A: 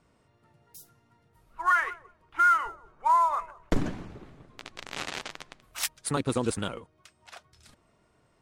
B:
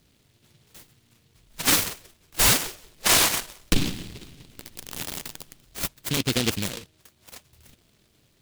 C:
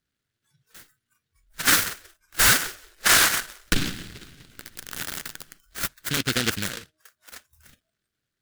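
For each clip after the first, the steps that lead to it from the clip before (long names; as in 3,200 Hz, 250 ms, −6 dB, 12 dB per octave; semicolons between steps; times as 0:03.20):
in parallel at −10 dB: sample-and-hold swept by an LFO 41×, swing 100% 0.24 Hz; on the sum: short delay modulated by noise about 3,200 Hz, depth 0.34 ms; level +2 dB
noise reduction from a noise print of the clip's start 19 dB; drawn EQ curve 1,000 Hz 0 dB, 1,500 Hz +13 dB, 2,400 Hz +3 dB; level −2.5 dB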